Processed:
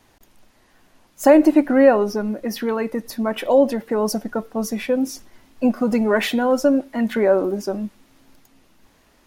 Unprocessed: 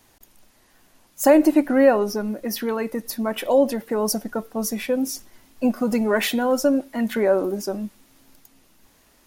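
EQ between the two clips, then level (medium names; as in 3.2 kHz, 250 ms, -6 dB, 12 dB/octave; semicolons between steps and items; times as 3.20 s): treble shelf 6.1 kHz -10.5 dB; +2.5 dB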